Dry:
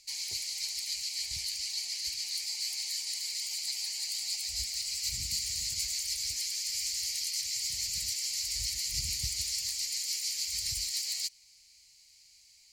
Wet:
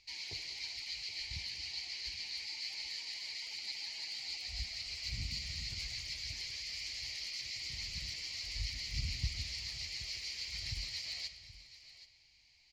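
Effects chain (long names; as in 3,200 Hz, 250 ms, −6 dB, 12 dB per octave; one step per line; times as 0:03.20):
high-frequency loss of the air 270 metres
single-tap delay 775 ms −15.5 dB
on a send at −10 dB: convolution reverb RT60 1.5 s, pre-delay 4 ms
on the sum: level +3.5 dB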